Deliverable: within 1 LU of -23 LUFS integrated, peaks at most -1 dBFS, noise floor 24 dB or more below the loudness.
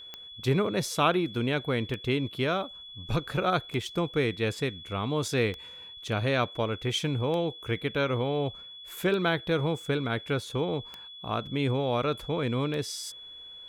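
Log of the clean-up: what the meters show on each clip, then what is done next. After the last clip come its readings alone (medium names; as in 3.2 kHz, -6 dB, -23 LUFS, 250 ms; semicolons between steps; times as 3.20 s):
clicks found 8; steady tone 3.4 kHz; tone level -43 dBFS; loudness -29.0 LUFS; peak level -11.5 dBFS; loudness target -23.0 LUFS
-> de-click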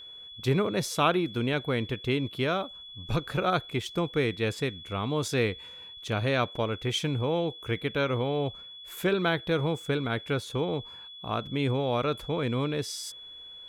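clicks found 0; steady tone 3.4 kHz; tone level -43 dBFS
-> band-stop 3.4 kHz, Q 30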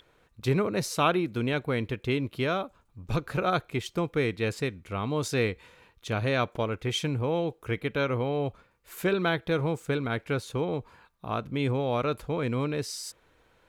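steady tone not found; loudness -29.5 LUFS; peak level -12.0 dBFS; loudness target -23.0 LUFS
-> trim +6.5 dB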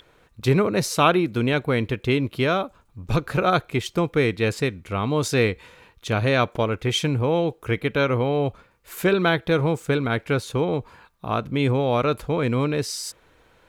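loudness -23.0 LUFS; peak level -5.5 dBFS; noise floor -58 dBFS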